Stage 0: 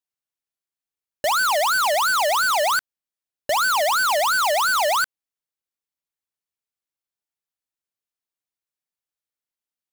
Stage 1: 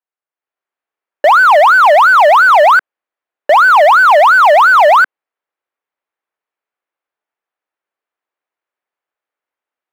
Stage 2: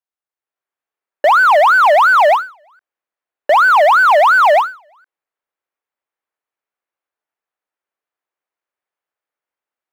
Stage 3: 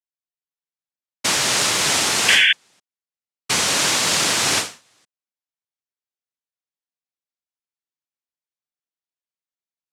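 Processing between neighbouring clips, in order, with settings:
three-band isolator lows -23 dB, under 330 Hz, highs -24 dB, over 2.3 kHz; level rider gain up to 10 dB; trim +5 dB
endings held to a fixed fall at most 170 dB/s; trim -3 dB
noise-vocoded speech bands 1; painted sound noise, 2.28–2.53 s, 1.5–3.5 kHz -4 dBFS; trim -10 dB

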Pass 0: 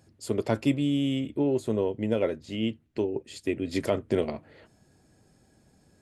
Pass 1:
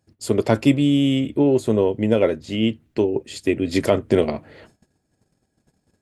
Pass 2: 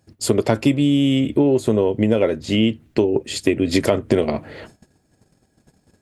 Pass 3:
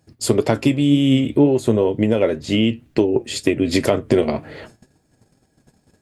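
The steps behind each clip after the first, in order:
gate -58 dBFS, range -19 dB; trim +8.5 dB
compression 4:1, threshold -22 dBFS, peak gain reduction 10.5 dB; trim +8 dB
flange 2 Hz, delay 6.1 ms, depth 2.8 ms, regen +75%; trim +5 dB

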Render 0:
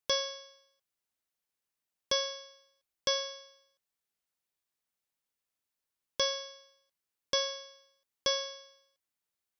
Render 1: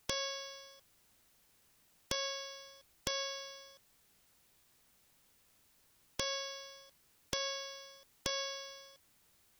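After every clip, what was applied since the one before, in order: peak limiter -25.5 dBFS, peak gain reduction 9.5 dB; bass shelf 250 Hz +9.5 dB; spectrum-flattening compressor 2:1; trim +9.5 dB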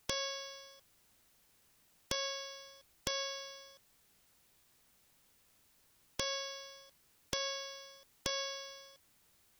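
no audible change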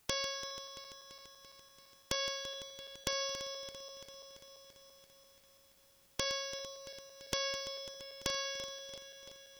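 backward echo that repeats 169 ms, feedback 81%, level -13 dB; trim +1 dB

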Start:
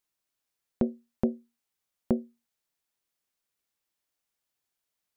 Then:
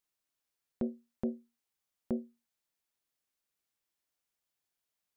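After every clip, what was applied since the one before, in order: peak limiter -19 dBFS, peak gain reduction 7.5 dB; trim -3 dB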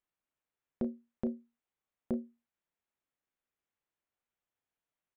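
local Wiener filter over 9 samples; doubling 33 ms -12.5 dB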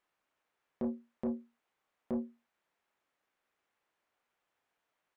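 peak limiter -31 dBFS, peak gain reduction 9 dB; overdrive pedal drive 15 dB, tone 1.6 kHz, clips at -31 dBFS; trim +5.5 dB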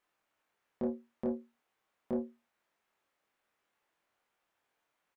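doubling 24 ms -3 dB

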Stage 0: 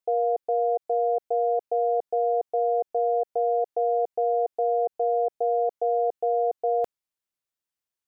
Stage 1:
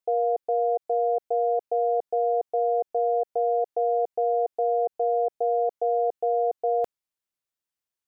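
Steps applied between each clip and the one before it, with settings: no audible change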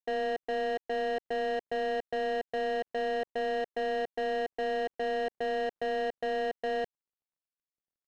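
median filter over 41 samples; peak limiter -26 dBFS, peak gain reduction 5 dB; saturation -35 dBFS, distortion -11 dB; trim +6.5 dB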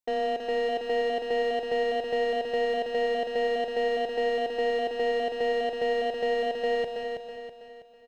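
band-stop 1.7 kHz, Q 5.7; feedback delay 325 ms, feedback 45%, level -5.5 dB; gated-style reverb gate 220 ms rising, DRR 8 dB; trim +3 dB

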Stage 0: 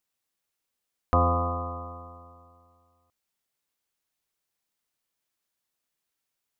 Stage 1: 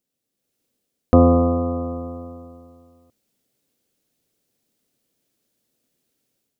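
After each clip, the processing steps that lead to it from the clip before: graphic EQ 125/250/500/1000/2000 Hz +7/+11/+8/-8/-3 dB; level rider gain up to 9 dB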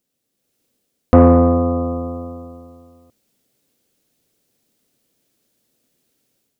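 saturation -6.5 dBFS, distortion -17 dB; trim +5.5 dB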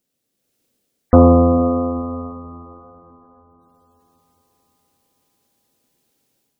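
echo that smears into a reverb 473 ms, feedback 46%, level -15 dB; spectral gate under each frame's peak -30 dB strong

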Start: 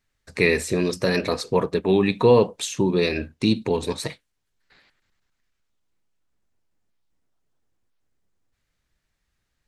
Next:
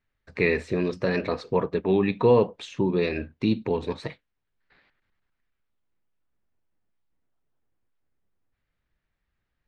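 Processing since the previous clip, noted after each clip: low-pass 2.8 kHz 12 dB/octave; trim -3 dB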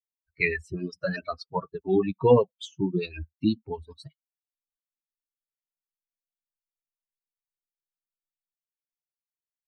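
expander on every frequency bin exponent 3; harmonic tremolo 8.1 Hz, depth 70%, crossover 520 Hz; trim +7 dB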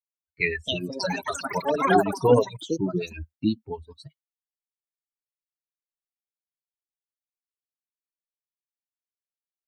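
gate with hold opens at -54 dBFS; ever faster or slower copies 408 ms, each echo +7 st, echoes 3

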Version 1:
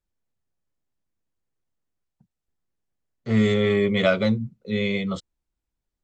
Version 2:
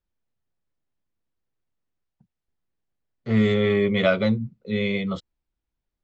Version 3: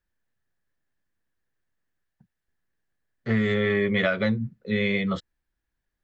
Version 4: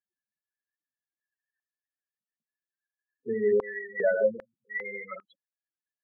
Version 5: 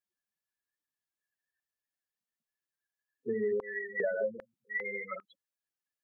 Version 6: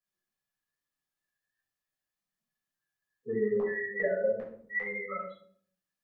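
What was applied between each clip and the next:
low-pass 4.5 kHz 12 dB/octave
peaking EQ 1.7 kHz +13.5 dB 0.35 oct; compression 10:1, threshold -20 dBFS, peak gain reduction 8.5 dB; trim +1 dB
chunks repeated in reverse 101 ms, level -5 dB; loudest bins only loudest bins 8; step-sequenced high-pass 2.5 Hz 360–2300 Hz; trim -5 dB
compression 6:1, threshold -29 dBFS, peak gain reduction 10.5 dB
reverberation RT60 0.60 s, pre-delay 9 ms, DRR -5 dB; trim -5 dB

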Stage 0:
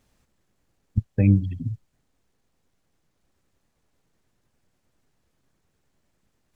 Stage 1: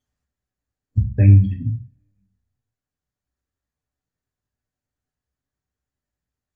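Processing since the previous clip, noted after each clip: spectral noise reduction 18 dB; on a send at -2 dB: peaking EQ 1.8 kHz +10.5 dB 0.42 oct + reverberation RT60 0.40 s, pre-delay 3 ms; on the sum: trim -1 dB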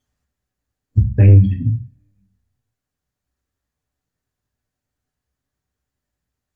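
sine folder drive 4 dB, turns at -1 dBFS; trim -2.5 dB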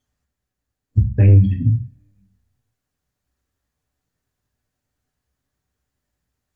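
gain riding within 3 dB 0.5 s

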